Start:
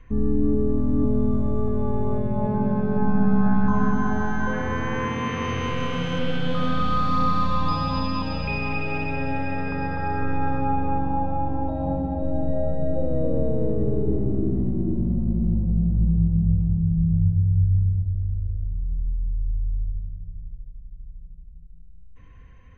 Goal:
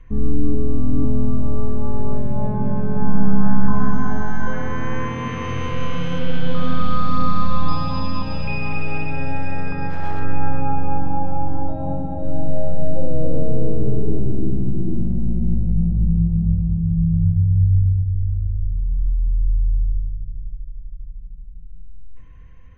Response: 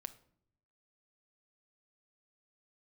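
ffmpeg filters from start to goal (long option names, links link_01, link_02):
-filter_complex "[0:a]asettb=1/sr,asplit=3[link_01][link_02][link_03];[link_01]atrim=end=9.904[link_04];[link_02]atrim=start=9.9:end=10.33,asetpts=PTS-STARTPTS,afade=type=in:duration=0.004:curve=qsin,afade=type=out:start_time=0.426:duration=0.004:curve=qsin,aeval=exprs='max(val(0),0)':channel_layout=same[link_05];[link_03]atrim=start=10.326[link_06];[link_04][link_05]acrossfade=duration=0.004:curve1=hsin:curve2=qsin[link_07];[link_07][link_06]acrossfade=duration=0.004:curve1=qsin:curve2=hsin,asettb=1/sr,asplit=3[link_08][link_09][link_10];[link_08]atrim=end=14.194[link_11];[link_09]atrim=start=14.19:end=14.89,asetpts=PTS-STARTPTS,afade=type=in:duration=0.004:curve=qsin,afade=type=out:start_time=0.696:duration=0.004:curve=qsin,lowpass=frequency=1100:poles=1[link_12];[link_10]atrim=start=14.886[link_13];[link_11][link_12]acrossfade=duration=0.004:curve1=hsin:curve2=qsin[link_14];[link_14][link_13]acrossfade=duration=0.004:curve1=qsin:curve2=hsin,asplit=2[link_15][link_16];[1:a]atrim=start_sample=2205,lowshelf=frequency=120:gain=8.5[link_17];[link_16][link_17]afir=irnorm=-1:irlink=0,volume=7dB[link_18];[link_15][link_18]amix=inputs=2:normalize=0,volume=-8.5dB"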